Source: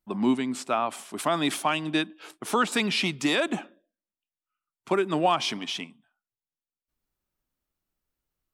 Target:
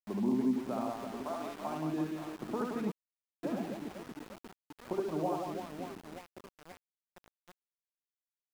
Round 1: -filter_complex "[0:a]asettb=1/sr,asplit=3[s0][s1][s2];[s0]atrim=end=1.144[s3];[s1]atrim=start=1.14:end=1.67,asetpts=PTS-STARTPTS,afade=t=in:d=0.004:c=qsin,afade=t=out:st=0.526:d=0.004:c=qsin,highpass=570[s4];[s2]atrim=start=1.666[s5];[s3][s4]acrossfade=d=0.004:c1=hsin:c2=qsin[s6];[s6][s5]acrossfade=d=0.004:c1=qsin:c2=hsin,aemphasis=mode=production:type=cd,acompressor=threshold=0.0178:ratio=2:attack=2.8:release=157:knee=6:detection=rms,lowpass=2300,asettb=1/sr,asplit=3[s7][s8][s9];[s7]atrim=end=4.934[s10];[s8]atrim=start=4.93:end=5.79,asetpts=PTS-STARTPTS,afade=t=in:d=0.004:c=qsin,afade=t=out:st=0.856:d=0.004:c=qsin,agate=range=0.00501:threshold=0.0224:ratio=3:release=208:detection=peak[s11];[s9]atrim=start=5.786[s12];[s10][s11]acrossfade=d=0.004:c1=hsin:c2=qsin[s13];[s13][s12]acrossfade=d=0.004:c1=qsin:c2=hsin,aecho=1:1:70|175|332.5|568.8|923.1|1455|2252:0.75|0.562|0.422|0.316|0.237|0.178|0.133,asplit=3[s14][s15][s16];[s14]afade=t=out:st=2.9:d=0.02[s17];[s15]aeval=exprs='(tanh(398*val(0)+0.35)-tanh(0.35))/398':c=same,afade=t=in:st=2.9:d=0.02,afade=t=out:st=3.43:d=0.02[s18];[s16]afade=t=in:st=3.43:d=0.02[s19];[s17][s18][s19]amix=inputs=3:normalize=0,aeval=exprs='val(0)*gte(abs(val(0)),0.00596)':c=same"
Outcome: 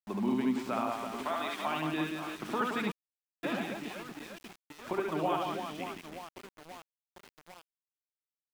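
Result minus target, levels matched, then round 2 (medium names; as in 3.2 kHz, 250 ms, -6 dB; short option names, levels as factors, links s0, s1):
2 kHz band +9.5 dB
-filter_complex "[0:a]asettb=1/sr,asplit=3[s0][s1][s2];[s0]atrim=end=1.144[s3];[s1]atrim=start=1.14:end=1.67,asetpts=PTS-STARTPTS,afade=t=in:d=0.004:c=qsin,afade=t=out:st=0.526:d=0.004:c=qsin,highpass=570[s4];[s2]atrim=start=1.666[s5];[s3][s4]acrossfade=d=0.004:c1=hsin:c2=qsin[s6];[s6][s5]acrossfade=d=0.004:c1=qsin:c2=hsin,aemphasis=mode=production:type=cd,acompressor=threshold=0.0178:ratio=2:attack=2.8:release=157:knee=6:detection=rms,lowpass=720,asettb=1/sr,asplit=3[s7][s8][s9];[s7]atrim=end=4.934[s10];[s8]atrim=start=4.93:end=5.79,asetpts=PTS-STARTPTS,afade=t=in:d=0.004:c=qsin,afade=t=out:st=0.856:d=0.004:c=qsin,agate=range=0.00501:threshold=0.0224:ratio=3:release=208:detection=peak[s11];[s9]atrim=start=5.786[s12];[s10][s11]acrossfade=d=0.004:c1=hsin:c2=qsin[s13];[s13][s12]acrossfade=d=0.004:c1=qsin:c2=hsin,aecho=1:1:70|175|332.5|568.8|923.1|1455|2252:0.75|0.562|0.422|0.316|0.237|0.178|0.133,asplit=3[s14][s15][s16];[s14]afade=t=out:st=2.9:d=0.02[s17];[s15]aeval=exprs='(tanh(398*val(0)+0.35)-tanh(0.35))/398':c=same,afade=t=in:st=2.9:d=0.02,afade=t=out:st=3.43:d=0.02[s18];[s16]afade=t=in:st=3.43:d=0.02[s19];[s17][s18][s19]amix=inputs=3:normalize=0,aeval=exprs='val(0)*gte(abs(val(0)),0.00596)':c=same"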